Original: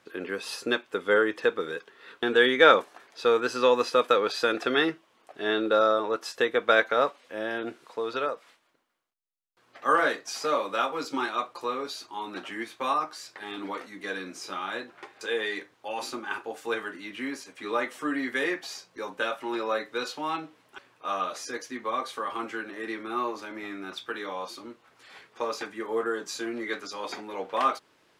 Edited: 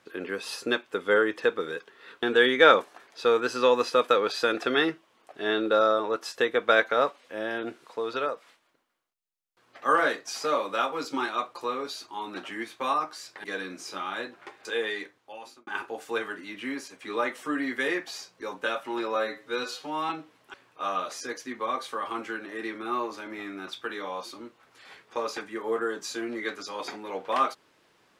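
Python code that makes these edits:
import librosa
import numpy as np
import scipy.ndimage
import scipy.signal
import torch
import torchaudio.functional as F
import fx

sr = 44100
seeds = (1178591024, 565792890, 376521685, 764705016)

y = fx.edit(x, sr, fx.cut(start_s=13.44, length_s=0.56),
    fx.fade_out_span(start_s=15.38, length_s=0.85),
    fx.stretch_span(start_s=19.71, length_s=0.63, factor=1.5), tone=tone)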